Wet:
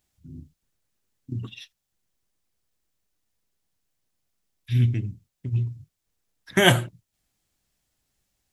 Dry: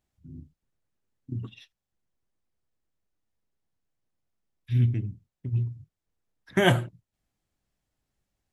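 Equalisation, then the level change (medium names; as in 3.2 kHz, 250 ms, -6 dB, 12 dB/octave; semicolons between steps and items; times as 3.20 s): treble shelf 2.4 kHz +10 dB; +2.0 dB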